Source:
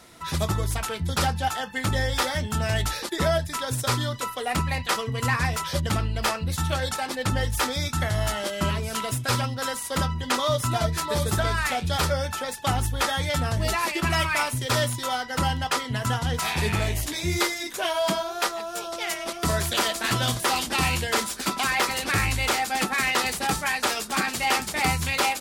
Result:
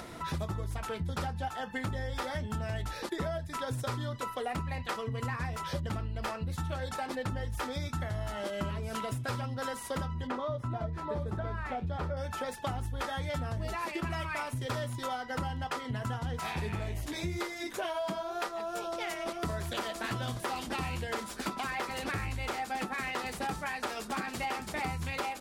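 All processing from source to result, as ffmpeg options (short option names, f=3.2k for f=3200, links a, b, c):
-filter_complex "[0:a]asettb=1/sr,asplit=3[a][b][c];[a]atrim=end=10.274[d];[b]atrim=start=10.27:end=12.17,asetpts=PTS-STARTPTS,afade=t=in:d=0.004:c=qsin,afade=t=out:st=1.896:d=0.004:c=qsin,lowpass=f=1.1k:p=1,bandreject=f=50:t=h:w=6,bandreject=f=100:t=h:w=6,bandreject=f=150:t=h:w=6[e];[c]atrim=start=12.166[f];[d][e]acrossfade=d=0.004:c1=hsin:c2=qsin[g];[g][f]acrossfade=d=0.004:c1=qsin:c2=hsin,acompressor=mode=upward:threshold=-34dB:ratio=2.5,highshelf=f=2.4k:g=-11,acompressor=threshold=-32dB:ratio=6"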